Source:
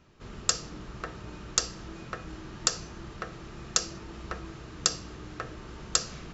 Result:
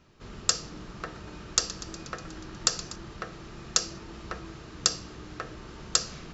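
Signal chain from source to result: peaking EQ 4.7 kHz +2.5 dB; hum notches 60/120 Hz; 0.65–2.96 s: modulated delay 121 ms, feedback 74%, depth 63 cents, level -15.5 dB

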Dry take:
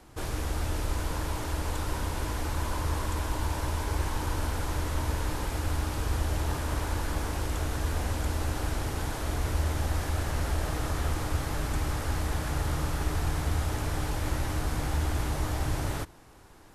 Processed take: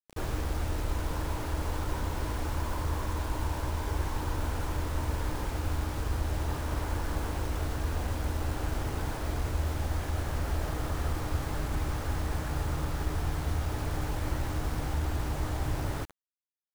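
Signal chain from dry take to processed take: low-pass 2.1 kHz 6 dB/octave; in parallel at +2 dB: gain riding; on the sum: bit crusher 6-bit; trim -8.5 dB

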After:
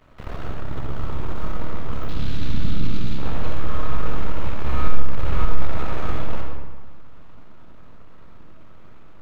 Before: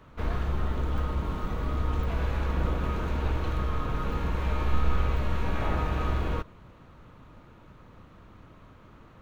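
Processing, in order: half-wave rectifier; 2.08–3.18 s: graphic EQ 125/250/500/1000/2000/4000 Hz +4/+7/-11/-9/-4/+11 dB; 4.88–5.45 s: reverse; algorithmic reverb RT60 1.4 s, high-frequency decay 0.65×, pre-delay 15 ms, DRR 0 dB; trim +2 dB

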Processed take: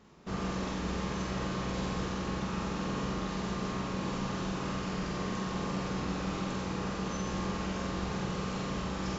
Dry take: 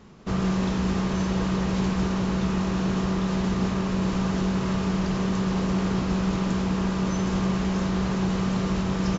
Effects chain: bass shelf 230 Hz -4.5 dB; flutter echo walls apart 7.9 m, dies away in 0.78 s; trim -7.5 dB

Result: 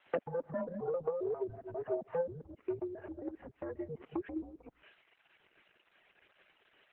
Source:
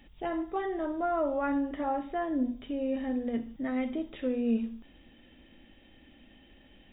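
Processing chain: time reversed locally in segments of 134 ms; compression 2:1, threshold -36 dBFS, peak gain reduction 7 dB; expander -48 dBFS; one-sided clip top -32.5 dBFS, bottom -28.5 dBFS; added noise blue -57 dBFS; low-pass that closes with the level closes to 470 Hz, closed at -32 dBFS; mistuned SSB -170 Hz 540–2900 Hz; reverb removal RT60 1.2 s; trim +9.5 dB; Opus 8 kbps 48 kHz

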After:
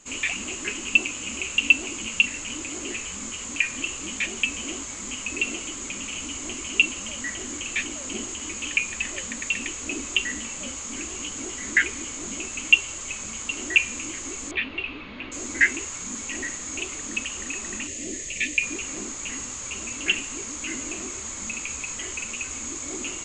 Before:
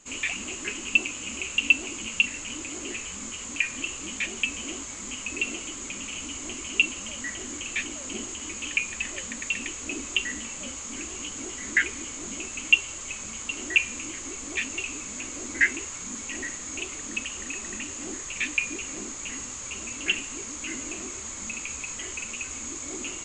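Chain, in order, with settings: 14.51–15.32 s: steep low-pass 4 kHz 48 dB/octave; 17.87–18.63 s: time-frequency box 710–1700 Hz -15 dB; trim +2.5 dB

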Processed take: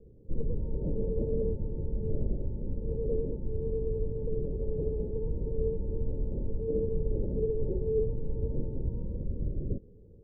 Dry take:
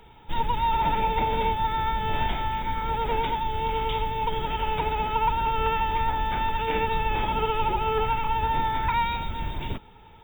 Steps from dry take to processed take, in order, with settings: Chebyshev low-pass 560 Hz, order 6

